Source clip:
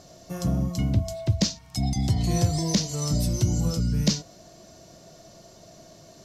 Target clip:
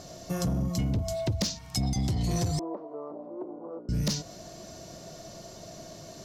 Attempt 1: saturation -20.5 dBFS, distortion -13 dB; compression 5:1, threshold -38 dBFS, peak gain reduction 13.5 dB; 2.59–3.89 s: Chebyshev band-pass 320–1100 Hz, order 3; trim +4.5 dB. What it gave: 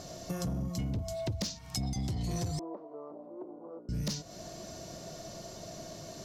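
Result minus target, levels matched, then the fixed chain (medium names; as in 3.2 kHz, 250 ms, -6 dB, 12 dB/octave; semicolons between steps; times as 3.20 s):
compression: peak gain reduction +6 dB
saturation -20.5 dBFS, distortion -13 dB; compression 5:1, threshold -30.5 dBFS, peak gain reduction 7.5 dB; 2.59–3.89 s: Chebyshev band-pass 320–1100 Hz, order 3; trim +4.5 dB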